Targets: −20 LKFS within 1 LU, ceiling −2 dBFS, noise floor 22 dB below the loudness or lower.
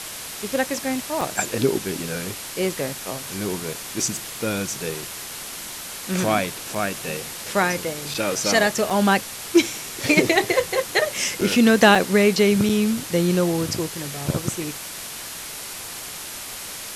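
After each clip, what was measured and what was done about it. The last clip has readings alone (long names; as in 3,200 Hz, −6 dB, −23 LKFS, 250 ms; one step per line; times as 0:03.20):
number of dropouts 7; longest dropout 4.3 ms; background noise floor −35 dBFS; target noise floor −45 dBFS; integrated loudness −22.5 LKFS; sample peak −3.0 dBFS; target loudness −20.0 LKFS
→ repair the gap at 0:01.21/0:06.75/0:08.14/0:08.90/0:11.41/0:11.95/0:12.69, 4.3 ms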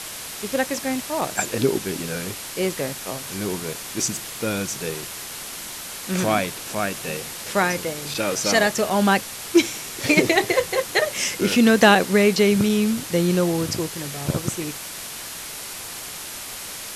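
number of dropouts 0; background noise floor −35 dBFS; target noise floor −45 dBFS
→ broadband denoise 10 dB, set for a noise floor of −35 dBFS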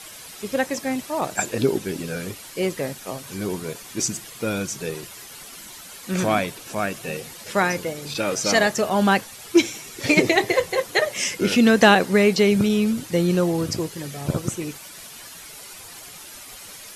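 background noise floor −41 dBFS; target noise floor −44 dBFS
→ broadband denoise 6 dB, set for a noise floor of −41 dBFS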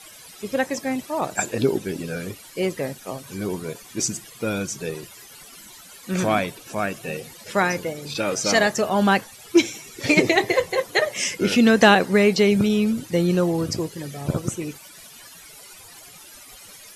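background noise floor −45 dBFS; integrated loudness −22.0 LKFS; sample peak −3.0 dBFS; target loudness −20.0 LKFS
→ level +2 dB
brickwall limiter −2 dBFS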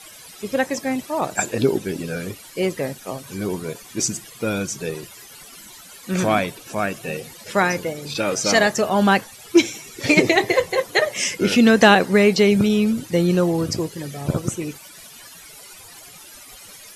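integrated loudness −20.0 LKFS; sample peak −2.0 dBFS; background noise floor −43 dBFS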